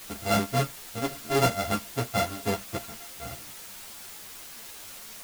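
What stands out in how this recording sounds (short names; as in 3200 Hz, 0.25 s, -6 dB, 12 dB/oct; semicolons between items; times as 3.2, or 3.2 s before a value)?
a buzz of ramps at a fixed pitch in blocks of 64 samples; tremolo triangle 3.7 Hz, depth 80%; a quantiser's noise floor 8-bit, dither triangular; a shimmering, thickened sound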